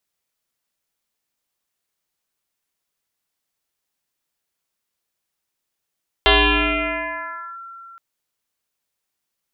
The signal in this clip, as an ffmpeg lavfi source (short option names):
-f lavfi -i "aevalsrc='0.335*pow(10,-3*t/3.37)*sin(2*PI*1360*t+6.2*clip(1-t/1.32,0,1)*sin(2*PI*0.26*1360*t))':d=1.72:s=44100"